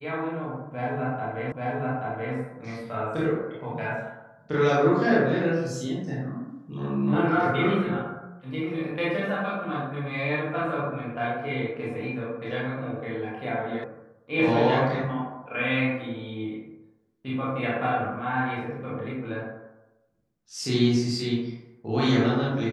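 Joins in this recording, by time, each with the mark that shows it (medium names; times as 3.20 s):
1.52 s: repeat of the last 0.83 s
13.84 s: sound stops dead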